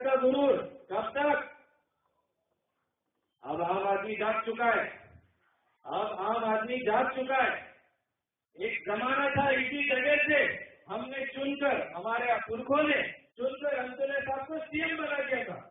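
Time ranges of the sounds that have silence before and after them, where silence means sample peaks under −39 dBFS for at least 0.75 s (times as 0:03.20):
0:03.45–0:04.96
0:05.86–0:07.66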